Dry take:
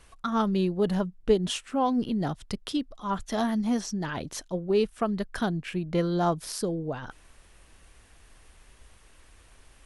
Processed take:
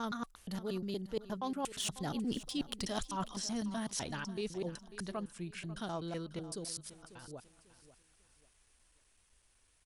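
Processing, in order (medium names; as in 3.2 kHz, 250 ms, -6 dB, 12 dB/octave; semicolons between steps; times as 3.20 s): slices played last to first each 122 ms, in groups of 4; Doppler pass-by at 2.39 s, 12 m/s, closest 4.6 m; de-esser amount 90%; treble shelf 3.3 kHz +12 dB; reverse; compression 6:1, threshold -41 dBFS, peak gain reduction 16.5 dB; reverse; feedback delay 544 ms, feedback 31%, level -15.5 dB; trim +6 dB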